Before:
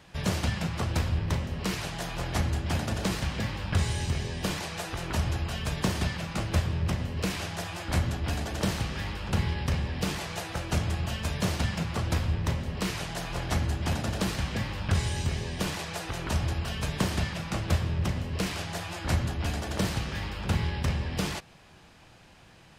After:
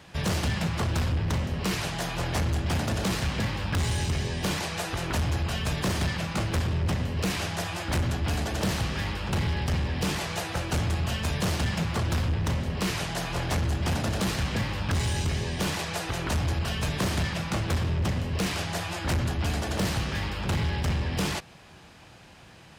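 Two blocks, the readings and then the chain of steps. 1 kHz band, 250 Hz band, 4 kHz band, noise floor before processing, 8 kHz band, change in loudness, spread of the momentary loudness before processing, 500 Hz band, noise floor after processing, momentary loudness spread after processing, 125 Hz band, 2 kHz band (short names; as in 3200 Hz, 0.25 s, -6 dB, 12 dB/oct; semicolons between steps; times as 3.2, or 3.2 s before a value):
+2.5 dB, +2.0 dB, +3.0 dB, -54 dBFS, +2.5 dB, +2.0 dB, 5 LU, +2.5 dB, -50 dBFS, 3 LU, +2.0 dB, +3.0 dB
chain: HPF 42 Hz; hard clip -26.5 dBFS, distortion -10 dB; gain +4 dB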